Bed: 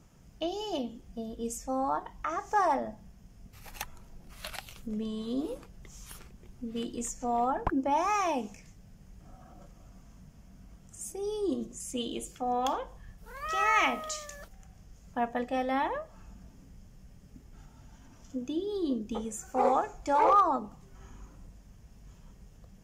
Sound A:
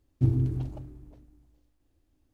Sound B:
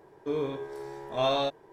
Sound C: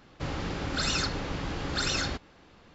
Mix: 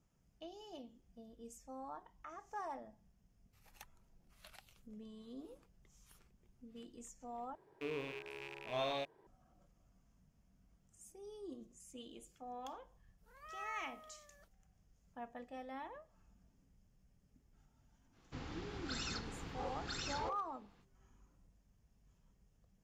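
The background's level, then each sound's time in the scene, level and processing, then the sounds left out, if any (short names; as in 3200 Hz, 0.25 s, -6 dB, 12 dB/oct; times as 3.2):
bed -18 dB
7.55 replace with B -12 dB + rattling part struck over -49 dBFS, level -25 dBFS
18.12 add C -14 dB, fades 0.05 s + notch 580 Hz, Q 5.1
not used: A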